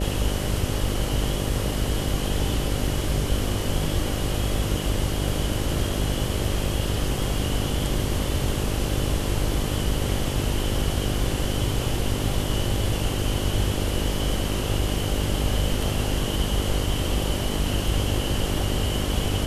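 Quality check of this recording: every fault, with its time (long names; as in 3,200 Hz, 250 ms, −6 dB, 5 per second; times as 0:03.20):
mains buzz 50 Hz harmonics 12 −28 dBFS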